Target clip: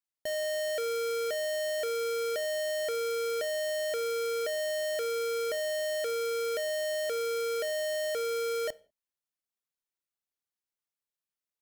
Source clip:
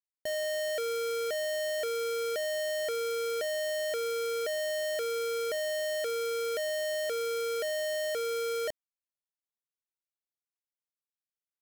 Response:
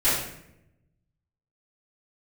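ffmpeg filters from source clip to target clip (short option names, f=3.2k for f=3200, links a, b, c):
-filter_complex "[0:a]asplit=2[a][b];[1:a]atrim=start_sample=2205,afade=t=out:st=0.35:d=0.01,atrim=end_sample=15876,asetrate=66150,aresample=44100[c];[b][c]afir=irnorm=-1:irlink=0,volume=-30.5dB[d];[a][d]amix=inputs=2:normalize=0"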